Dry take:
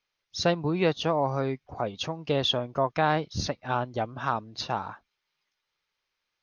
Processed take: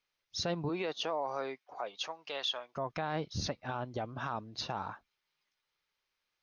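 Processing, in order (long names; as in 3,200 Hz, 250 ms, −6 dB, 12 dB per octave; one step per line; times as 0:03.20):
0:00.68–0:02.76: high-pass filter 320 Hz → 1,200 Hz 12 dB per octave
brickwall limiter −22 dBFS, peak gain reduction 10 dB
level −3 dB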